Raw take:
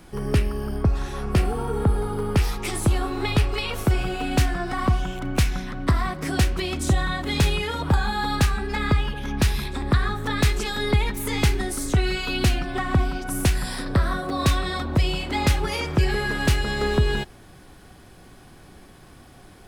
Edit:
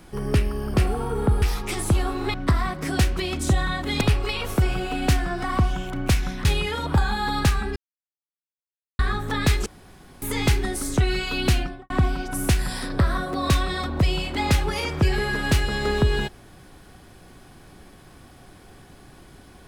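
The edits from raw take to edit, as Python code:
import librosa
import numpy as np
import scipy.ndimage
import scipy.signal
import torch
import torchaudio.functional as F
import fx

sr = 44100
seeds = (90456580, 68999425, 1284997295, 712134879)

y = fx.studio_fade_out(x, sr, start_s=12.53, length_s=0.33)
y = fx.edit(y, sr, fx.cut(start_s=0.74, length_s=0.58),
    fx.cut(start_s=2.0, length_s=0.38),
    fx.move(start_s=5.74, length_s=1.67, to_s=3.3),
    fx.silence(start_s=8.72, length_s=1.23),
    fx.room_tone_fill(start_s=10.62, length_s=0.56), tone=tone)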